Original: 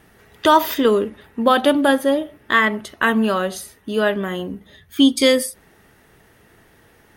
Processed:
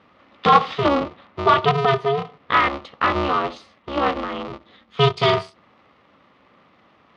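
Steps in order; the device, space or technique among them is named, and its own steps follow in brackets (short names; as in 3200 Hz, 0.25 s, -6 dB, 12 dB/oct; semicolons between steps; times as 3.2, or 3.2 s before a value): ring modulator pedal into a guitar cabinet (polarity switched at an audio rate 140 Hz; speaker cabinet 110–4100 Hz, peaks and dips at 360 Hz -3 dB, 1200 Hz +10 dB, 1600 Hz -8 dB); gain -2.5 dB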